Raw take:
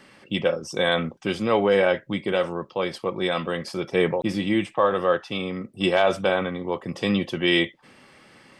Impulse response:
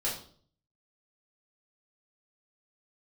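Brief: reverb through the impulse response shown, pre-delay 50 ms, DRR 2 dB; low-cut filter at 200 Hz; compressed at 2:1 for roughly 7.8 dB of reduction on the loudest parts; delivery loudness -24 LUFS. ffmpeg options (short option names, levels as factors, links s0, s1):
-filter_complex "[0:a]highpass=200,acompressor=threshold=0.0316:ratio=2,asplit=2[s0][s1];[1:a]atrim=start_sample=2205,adelay=50[s2];[s1][s2]afir=irnorm=-1:irlink=0,volume=0.422[s3];[s0][s3]amix=inputs=2:normalize=0,volume=1.68"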